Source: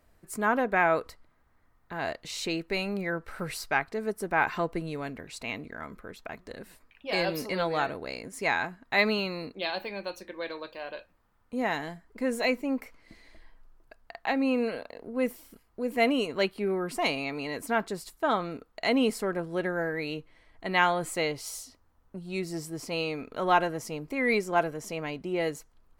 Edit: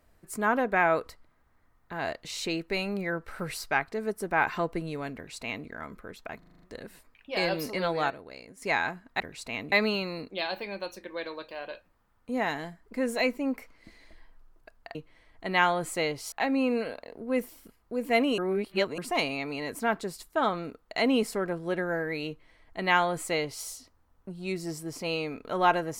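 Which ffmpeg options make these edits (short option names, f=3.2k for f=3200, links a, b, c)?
-filter_complex "[0:a]asplit=15[a][b][c][d][e][f][g][h][i][j][k][l][m][n][o];[a]atrim=end=6.422[p];[b]atrim=start=6.378:end=6.422[q];[c]atrim=start=6.378:end=6.422[r];[d]atrim=start=6.378:end=6.422[s];[e]atrim=start=6.378:end=6.422[t];[f]atrim=start=6.378:end=6.422[u];[g]atrim=start=6.378:end=7.862[v];[h]atrim=start=7.858:end=8.382,asetpts=PTS-STARTPTS,volume=-8.5dB[w];[i]atrim=start=8.378:end=8.962[x];[j]atrim=start=5.148:end=5.672[y];[k]atrim=start=8.958:end=14.192[z];[l]atrim=start=20.148:end=21.522[aa];[m]atrim=start=14.188:end=16.252[ab];[n]atrim=start=16.248:end=16.852,asetpts=PTS-STARTPTS,areverse[ac];[o]atrim=start=16.848[ad];[p][q]acrossfade=d=0.004:c1=hsin:c2=hsin[ae];[ae][r]acrossfade=d=0.004:c1=hsin:c2=hsin[af];[af][s]acrossfade=d=0.004:c1=hsin:c2=hsin[ag];[ag][t]acrossfade=d=0.004:c1=hsin:c2=hsin[ah];[ah][u]acrossfade=d=0.004:c1=hsin:c2=hsin[ai];[ai][v]acrossfade=d=0.004:c1=hsin:c2=hsin[aj];[aj][w]acrossfade=d=0.004:c1=hsin:c2=hsin[ak];[ak][x]acrossfade=d=0.004:c1=hsin:c2=hsin[al];[al][y]acrossfade=d=0.004:c1=hsin:c2=hsin[am];[am][z]acrossfade=d=0.004:c1=hsin:c2=hsin[an];[an][aa]acrossfade=d=0.004:c1=hsin:c2=hsin[ao];[ao][ab]acrossfade=d=0.004:c1=hsin:c2=hsin[ap];[ap][ac]acrossfade=d=0.004:c1=hsin:c2=hsin[aq];[aq][ad]acrossfade=d=0.004:c1=hsin:c2=hsin"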